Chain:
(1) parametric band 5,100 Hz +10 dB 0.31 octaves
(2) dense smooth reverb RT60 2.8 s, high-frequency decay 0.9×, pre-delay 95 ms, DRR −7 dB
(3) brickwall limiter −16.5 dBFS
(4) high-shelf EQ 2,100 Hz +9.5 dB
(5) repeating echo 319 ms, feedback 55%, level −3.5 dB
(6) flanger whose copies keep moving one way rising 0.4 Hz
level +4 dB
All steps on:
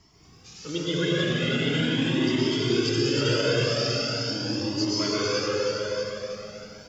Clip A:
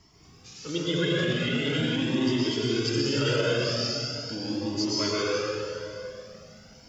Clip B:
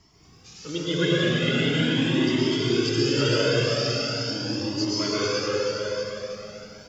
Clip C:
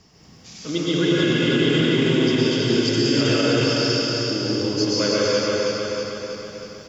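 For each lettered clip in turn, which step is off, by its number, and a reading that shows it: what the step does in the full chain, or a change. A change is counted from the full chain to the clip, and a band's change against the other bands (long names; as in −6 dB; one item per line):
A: 5, change in integrated loudness −2.0 LU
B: 3, change in momentary loudness spread +1 LU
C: 6, 250 Hz band +2.0 dB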